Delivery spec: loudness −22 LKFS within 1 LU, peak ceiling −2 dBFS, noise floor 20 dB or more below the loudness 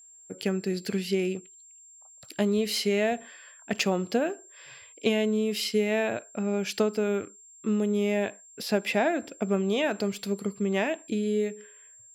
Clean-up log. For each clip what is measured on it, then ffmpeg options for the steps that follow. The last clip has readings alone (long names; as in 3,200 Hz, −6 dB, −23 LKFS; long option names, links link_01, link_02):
interfering tone 7,400 Hz; level of the tone −50 dBFS; integrated loudness −28.0 LKFS; sample peak −12.0 dBFS; target loudness −22.0 LKFS
→ -af "bandreject=frequency=7400:width=30"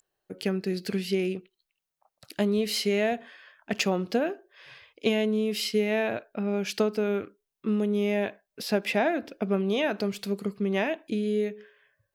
interfering tone none found; integrated loudness −28.0 LKFS; sample peak −12.0 dBFS; target loudness −22.0 LKFS
→ -af "volume=6dB"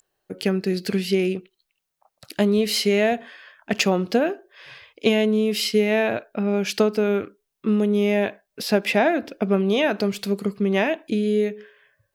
integrated loudness −22.0 LKFS; sample peak −6.0 dBFS; background noise floor −79 dBFS